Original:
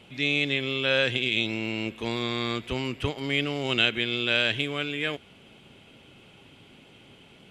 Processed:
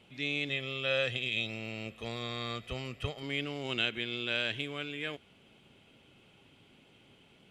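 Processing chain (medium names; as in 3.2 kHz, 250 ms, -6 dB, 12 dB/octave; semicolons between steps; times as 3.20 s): 0.49–3.23 s: comb 1.6 ms, depth 55%; trim -8.5 dB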